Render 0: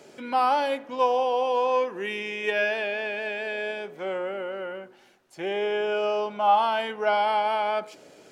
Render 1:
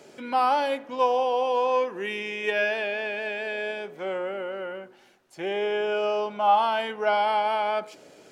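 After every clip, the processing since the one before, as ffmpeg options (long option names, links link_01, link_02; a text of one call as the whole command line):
ffmpeg -i in.wav -af anull out.wav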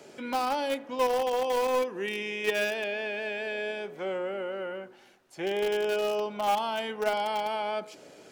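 ffmpeg -i in.wav -filter_complex "[0:a]acrossover=split=480|3000[link_01][link_02][link_03];[link_02]acompressor=threshold=-38dB:ratio=2[link_04];[link_01][link_04][link_03]amix=inputs=3:normalize=0,asplit=2[link_05][link_06];[link_06]acrusher=bits=3:mix=0:aa=0.000001,volume=-11dB[link_07];[link_05][link_07]amix=inputs=2:normalize=0" out.wav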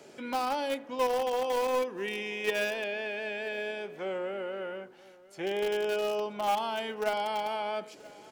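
ffmpeg -i in.wav -af "aecho=1:1:981:0.0794,volume=-2dB" out.wav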